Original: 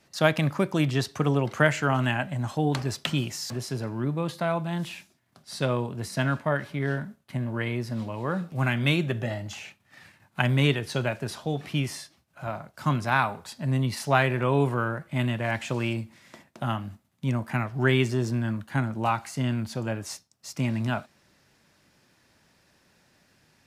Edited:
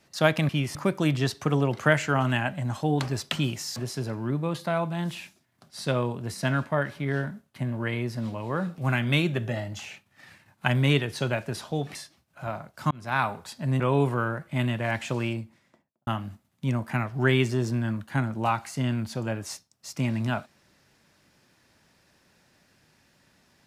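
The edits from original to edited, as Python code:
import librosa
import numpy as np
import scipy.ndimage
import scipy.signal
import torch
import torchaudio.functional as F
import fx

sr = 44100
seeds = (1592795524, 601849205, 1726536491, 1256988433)

y = fx.studio_fade_out(x, sr, start_s=15.7, length_s=0.97)
y = fx.edit(y, sr, fx.move(start_s=11.69, length_s=0.26, to_s=0.49),
    fx.fade_in_span(start_s=12.91, length_s=0.35),
    fx.cut(start_s=13.8, length_s=0.6), tone=tone)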